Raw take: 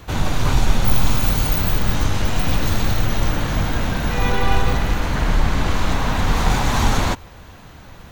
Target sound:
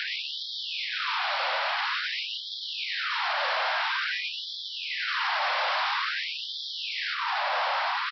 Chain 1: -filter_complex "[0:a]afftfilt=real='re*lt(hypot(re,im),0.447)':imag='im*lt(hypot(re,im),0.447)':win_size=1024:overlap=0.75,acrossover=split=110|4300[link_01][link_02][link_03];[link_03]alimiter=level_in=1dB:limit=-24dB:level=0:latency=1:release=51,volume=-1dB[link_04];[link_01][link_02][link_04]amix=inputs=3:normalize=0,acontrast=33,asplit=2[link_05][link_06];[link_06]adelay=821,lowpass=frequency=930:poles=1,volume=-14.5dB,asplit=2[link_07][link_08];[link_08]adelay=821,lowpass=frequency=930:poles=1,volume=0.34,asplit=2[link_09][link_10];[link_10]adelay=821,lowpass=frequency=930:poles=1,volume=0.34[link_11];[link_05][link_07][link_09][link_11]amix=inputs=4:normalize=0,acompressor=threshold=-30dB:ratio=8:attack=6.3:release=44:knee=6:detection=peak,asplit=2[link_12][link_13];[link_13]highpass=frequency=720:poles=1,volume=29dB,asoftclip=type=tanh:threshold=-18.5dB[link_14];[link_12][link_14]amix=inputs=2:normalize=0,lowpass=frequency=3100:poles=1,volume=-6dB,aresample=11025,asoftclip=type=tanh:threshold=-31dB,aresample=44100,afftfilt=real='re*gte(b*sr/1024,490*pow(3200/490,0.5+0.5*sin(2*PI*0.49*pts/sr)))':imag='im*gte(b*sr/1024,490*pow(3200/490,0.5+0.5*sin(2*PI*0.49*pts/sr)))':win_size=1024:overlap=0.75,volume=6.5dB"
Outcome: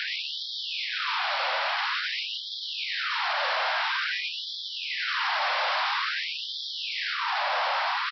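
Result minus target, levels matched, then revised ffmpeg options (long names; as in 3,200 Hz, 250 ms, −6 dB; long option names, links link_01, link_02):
downward compressor: peak gain reduction −7.5 dB
-filter_complex "[0:a]afftfilt=real='re*lt(hypot(re,im),0.447)':imag='im*lt(hypot(re,im),0.447)':win_size=1024:overlap=0.75,acrossover=split=110|4300[link_01][link_02][link_03];[link_03]alimiter=level_in=1dB:limit=-24dB:level=0:latency=1:release=51,volume=-1dB[link_04];[link_01][link_02][link_04]amix=inputs=3:normalize=0,acontrast=33,asplit=2[link_05][link_06];[link_06]adelay=821,lowpass=frequency=930:poles=1,volume=-14.5dB,asplit=2[link_07][link_08];[link_08]adelay=821,lowpass=frequency=930:poles=1,volume=0.34,asplit=2[link_09][link_10];[link_10]adelay=821,lowpass=frequency=930:poles=1,volume=0.34[link_11];[link_05][link_07][link_09][link_11]amix=inputs=4:normalize=0,acompressor=threshold=-38.5dB:ratio=8:attack=6.3:release=44:knee=6:detection=peak,asplit=2[link_12][link_13];[link_13]highpass=frequency=720:poles=1,volume=29dB,asoftclip=type=tanh:threshold=-18.5dB[link_14];[link_12][link_14]amix=inputs=2:normalize=0,lowpass=frequency=3100:poles=1,volume=-6dB,aresample=11025,asoftclip=type=tanh:threshold=-31dB,aresample=44100,afftfilt=real='re*gte(b*sr/1024,490*pow(3200/490,0.5+0.5*sin(2*PI*0.49*pts/sr)))':imag='im*gte(b*sr/1024,490*pow(3200/490,0.5+0.5*sin(2*PI*0.49*pts/sr)))':win_size=1024:overlap=0.75,volume=6.5dB"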